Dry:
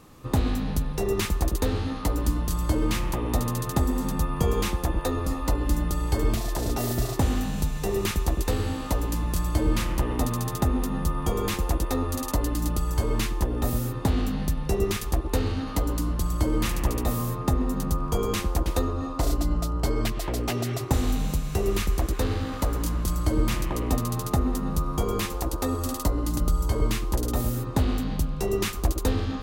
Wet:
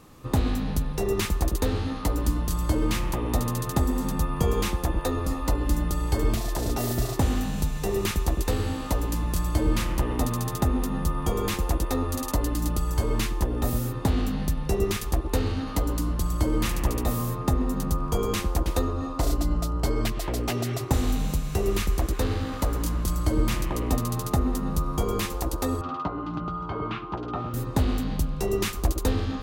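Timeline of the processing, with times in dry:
25.81–27.54 speaker cabinet 150–3000 Hz, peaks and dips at 160 Hz +5 dB, 240 Hz -7 dB, 520 Hz -9 dB, 760 Hz +4 dB, 1300 Hz +9 dB, 1900 Hz -7 dB

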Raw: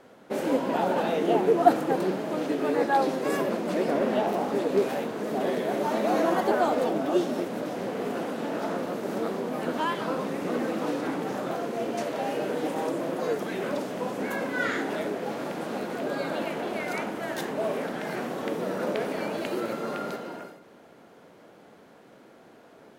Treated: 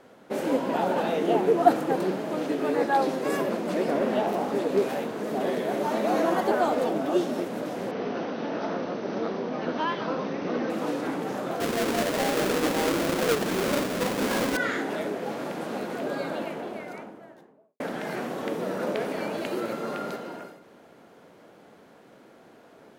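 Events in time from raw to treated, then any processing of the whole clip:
7.91–10.7 brick-wall FIR low-pass 6300 Hz
11.6–14.57 half-waves squared off
15.96–17.8 studio fade out

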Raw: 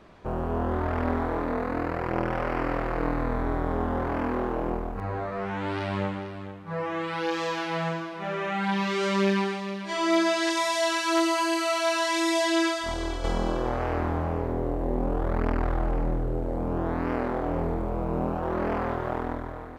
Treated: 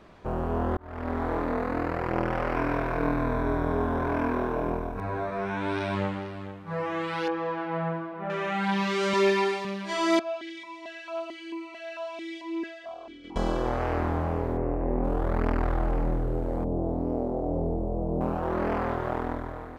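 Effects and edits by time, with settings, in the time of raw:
0.77–1.31 fade in
2.55–5.95 ripple EQ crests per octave 1.6, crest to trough 8 dB
7.28–8.3 LPF 1400 Hz
9.13–9.65 comb 2.9 ms, depth 84%
10.19–13.36 vowel sequencer 4.5 Hz
14.57–15.04 careless resampling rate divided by 8×, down none, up filtered
16.64–18.21 EQ curve 680 Hz 0 dB, 1700 Hz -29 dB, 7200 Hz -11 dB

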